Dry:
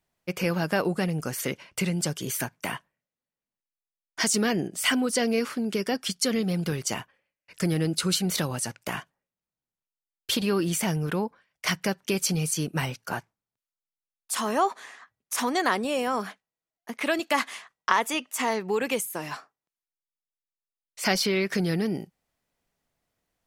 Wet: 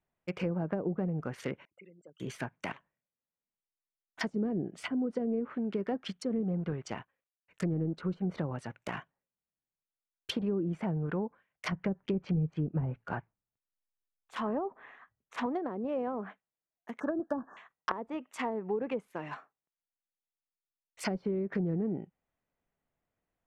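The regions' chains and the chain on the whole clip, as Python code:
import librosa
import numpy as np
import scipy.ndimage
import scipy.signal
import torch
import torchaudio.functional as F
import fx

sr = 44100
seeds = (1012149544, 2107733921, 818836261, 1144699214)

y = fx.chain(x, sr, fx.envelope_sharpen(power=3.0),
    fx.auto_wah(base_hz=280.0, top_hz=1200.0, q=3.6, full_db=-29.5, direction='up'), at=(1.65, 2.2))
y = fx.chain(y, sr, fx.clip_hard(threshold_db=-28.0),
    fx.transformer_sat(knee_hz=4000.0), at=(2.72, 4.21))
y = fx.chain(y, sr, fx.law_mismatch(coded='A'),
    fx.lowpass(hz=10000.0, slope=12), at=(6.58, 8.22))
y = fx.chain(y, sr, fx.lowpass(hz=3900.0, slope=12),
    fx.low_shelf(hz=100.0, db=11.5), at=(11.72, 15.46))
y = fx.chain(y, sr, fx.brickwall_bandstop(low_hz=1800.0, high_hz=4800.0),
    fx.low_shelf(hz=200.0, db=7.5), at=(17.0, 17.57))
y = fx.wiener(y, sr, points=9)
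y = fx.env_lowpass_down(y, sr, base_hz=440.0, full_db=-21.0)
y = F.gain(torch.from_numpy(y), -5.0).numpy()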